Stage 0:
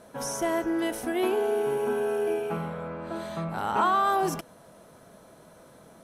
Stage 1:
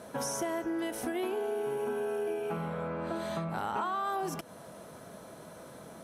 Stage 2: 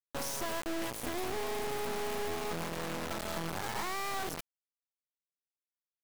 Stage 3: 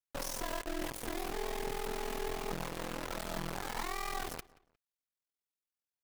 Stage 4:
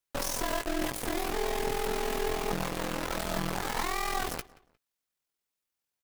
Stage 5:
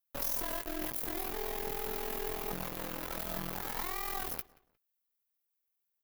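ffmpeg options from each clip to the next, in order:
-af "highpass=62,acompressor=threshold=-36dB:ratio=5,volume=4dB"
-af "equalizer=f=1.5k:t=o:w=0.32:g=-7.5,acrusher=bits=3:dc=4:mix=0:aa=0.000001"
-filter_complex "[0:a]aeval=exprs='val(0)*sin(2*PI*21*n/s)':c=same,aphaser=in_gain=1:out_gain=1:delay=4.3:decay=0.23:speed=1.2:type=triangular,asplit=2[a][b];[b]adelay=178,lowpass=f=3.9k:p=1,volume=-21dB,asplit=2[c][d];[d]adelay=178,lowpass=f=3.9k:p=1,volume=0.29[e];[a][c][e]amix=inputs=3:normalize=0"
-filter_complex "[0:a]asplit=2[a][b];[b]adelay=16,volume=-10.5dB[c];[a][c]amix=inputs=2:normalize=0,volume=6.5dB"
-af "aexciter=amount=3.2:drive=7.4:freq=11k,volume=-8dB"

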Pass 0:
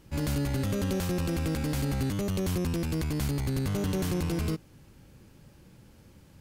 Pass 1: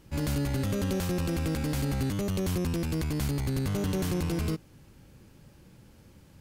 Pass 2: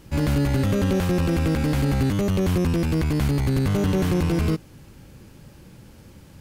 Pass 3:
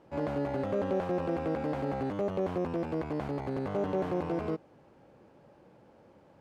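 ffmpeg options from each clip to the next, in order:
-af anull
-filter_complex "[0:a]acrossover=split=3300[a][b];[b]acompressor=threshold=-46dB:ratio=4:attack=1:release=60[c];[a][c]amix=inputs=2:normalize=0,volume=8dB"
-af "bandpass=f=660:t=q:w=1.6:csg=0"

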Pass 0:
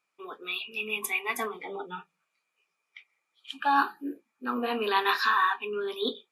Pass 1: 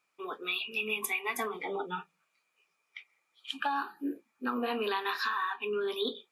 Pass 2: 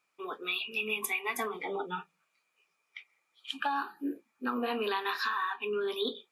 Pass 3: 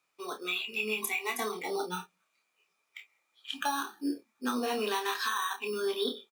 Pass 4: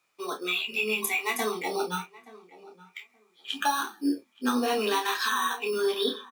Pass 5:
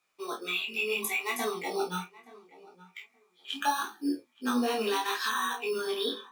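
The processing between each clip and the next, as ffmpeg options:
-af "acompressor=threshold=-31dB:ratio=12,volume=2.5dB"
-af anull
-filter_complex "[0:a]acrossover=split=120|1600[a][b][c];[b]acrusher=samples=9:mix=1:aa=0.000001[d];[a][d][c]amix=inputs=3:normalize=0,asplit=2[e][f];[f]adelay=28,volume=-6.5dB[g];[e][g]amix=inputs=2:normalize=0"
-filter_complex "[0:a]flanger=delay=8.4:depth=4.3:regen=-36:speed=0.78:shape=triangular,asplit=2[a][b];[b]adelay=874,lowpass=f=1.6k:p=1,volume=-19dB,asplit=2[c][d];[d]adelay=874,lowpass=f=1.6k:p=1,volume=0.18[e];[a][c][e]amix=inputs=3:normalize=0,volume=8.5dB"
-af "flanger=delay=16.5:depth=5.8:speed=0.72"

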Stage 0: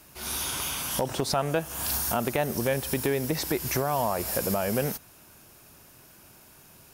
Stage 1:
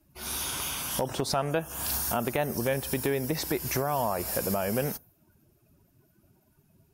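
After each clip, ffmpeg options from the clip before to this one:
-af "afftdn=nr=20:nf=-49,volume=-1.5dB"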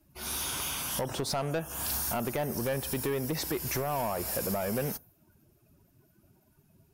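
-af "asoftclip=type=tanh:threshold=-25dB"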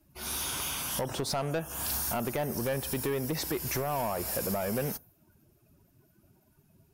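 -af anull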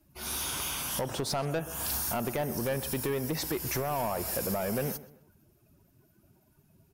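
-filter_complex "[0:a]asplit=2[a][b];[b]adelay=128,lowpass=f=2.8k:p=1,volume=-16dB,asplit=2[c][d];[d]adelay=128,lowpass=f=2.8k:p=1,volume=0.38,asplit=2[e][f];[f]adelay=128,lowpass=f=2.8k:p=1,volume=0.38[g];[a][c][e][g]amix=inputs=4:normalize=0"

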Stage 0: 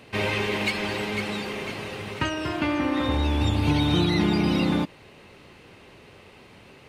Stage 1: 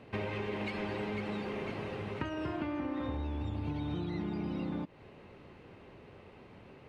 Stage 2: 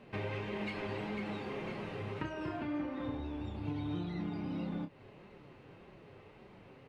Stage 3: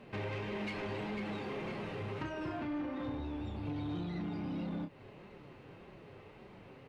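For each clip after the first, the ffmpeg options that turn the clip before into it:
-af "lowpass=f=1.1k:p=1,acompressor=threshold=-30dB:ratio=12,volume=-2.5dB"
-filter_complex "[0:a]flanger=delay=4.8:depth=3.3:regen=-30:speed=1.7:shape=triangular,asplit=2[a][b];[b]adelay=30,volume=-7.5dB[c];[a][c]amix=inputs=2:normalize=0,volume=1dB"
-af "asoftclip=type=tanh:threshold=-34.5dB,volume=2dB"

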